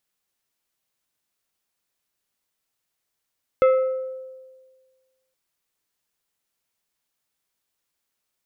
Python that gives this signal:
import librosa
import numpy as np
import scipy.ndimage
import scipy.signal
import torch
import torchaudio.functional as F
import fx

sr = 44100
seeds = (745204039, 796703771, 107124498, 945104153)

y = fx.strike_glass(sr, length_s=1.72, level_db=-11.5, body='plate', hz=521.0, decay_s=1.55, tilt_db=9.5, modes=5)